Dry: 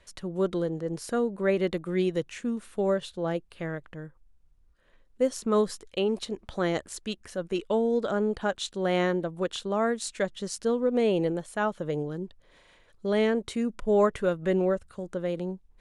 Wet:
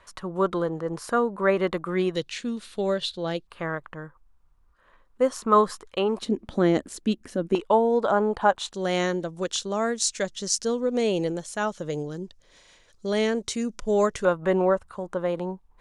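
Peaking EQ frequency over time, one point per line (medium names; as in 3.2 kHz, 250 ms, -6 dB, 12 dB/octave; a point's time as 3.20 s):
peaking EQ +14.5 dB 1.1 oct
1.1 kHz
from 2.15 s 4.1 kHz
from 3.47 s 1.1 kHz
from 6.22 s 260 Hz
from 7.55 s 920 Hz
from 8.73 s 6 kHz
from 14.25 s 980 Hz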